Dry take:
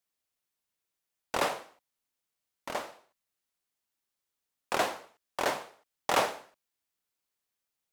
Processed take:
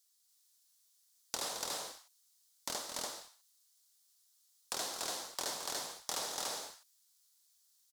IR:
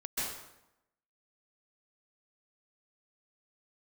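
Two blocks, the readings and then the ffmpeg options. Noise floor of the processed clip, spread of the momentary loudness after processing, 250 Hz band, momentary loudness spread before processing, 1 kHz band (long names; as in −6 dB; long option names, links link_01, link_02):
−72 dBFS, 12 LU, −10.5 dB, 19 LU, −11.0 dB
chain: -filter_complex "[0:a]alimiter=limit=-22.5dB:level=0:latency=1:release=161,acrossover=split=730[link_01][link_02];[link_01]aeval=exprs='val(0)*gte(abs(val(0)),0.00141)':channel_layout=same[link_03];[link_03][link_02]amix=inputs=2:normalize=0,equalizer=frequency=620:width_type=o:width=0.45:gain=-2,aexciter=amount=6.3:drive=7:freq=3700,highshelf=frequency=9400:gain=-12,asplit=2[link_04][link_05];[link_05]aecho=0:1:218.7|288.6:0.316|0.794[link_06];[link_04][link_06]amix=inputs=2:normalize=0,acompressor=threshold=-39dB:ratio=2.5"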